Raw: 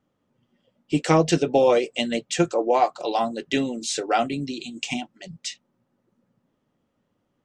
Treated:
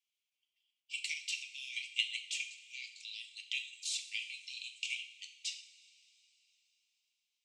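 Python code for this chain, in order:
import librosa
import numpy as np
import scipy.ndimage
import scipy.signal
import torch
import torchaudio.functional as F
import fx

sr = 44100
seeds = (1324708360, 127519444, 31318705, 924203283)

y = scipy.signal.sosfilt(scipy.signal.butter(16, 2200.0, 'highpass', fs=sr, output='sos'), x)
y = fx.dynamic_eq(y, sr, hz=6200.0, q=1.1, threshold_db=-44.0, ratio=4.0, max_db=-6)
y = fx.level_steps(y, sr, step_db=9)
y = fx.rev_double_slope(y, sr, seeds[0], early_s=0.52, late_s=3.7, knee_db=-18, drr_db=4.5)
y = F.gain(torch.from_numpy(y), -1.5).numpy()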